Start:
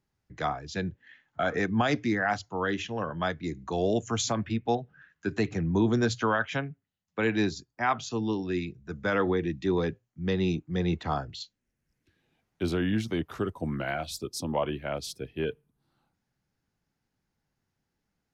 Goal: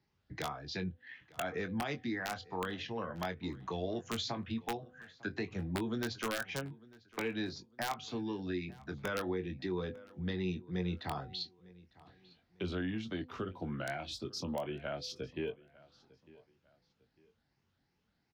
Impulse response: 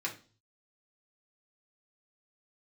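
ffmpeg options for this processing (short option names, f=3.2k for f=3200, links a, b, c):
-filter_complex "[0:a]afftfilt=real='re*pow(10,6/40*sin(2*PI*(0.77*log(max(b,1)*sr/1024/100)/log(2)-(2.8)*(pts-256)/sr)))':imag='im*pow(10,6/40*sin(2*PI*(0.77*log(max(b,1)*sr/1024/100)/log(2)-(2.8)*(pts-256)/sr)))':win_size=1024:overlap=0.75,highpass=41,highshelf=f=6.5k:t=q:w=1.5:g=-14,bandreject=f=251.4:t=h:w=4,bandreject=f=502.8:t=h:w=4,bandreject=f=754.2:t=h:w=4,acompressor=threshold=-42dB:ratio=2.5,acrossover=split=120|3500[a][b][c];[b]aeval=exprs='(mod(25.1*val(0)+1,2)-1)/25.1':c=same[d];[a][d][c]amix=inputs=3:normalize=0,asplit=2[e][f];[f]adelay=22,volume=-9dB[g];[e][g]amix=inputs=2:normalize=0,asplit=2[h][i];[i]adelay=901,lowpass=f=4.7k:p=1,volume=-22dB,asplit=2[j][k];[k]adelay=901,lowpass=f=4.7k:p=1,volume=0.35[l];[h][j][l]amix=inputs=3:normalize=0,volume=1dB"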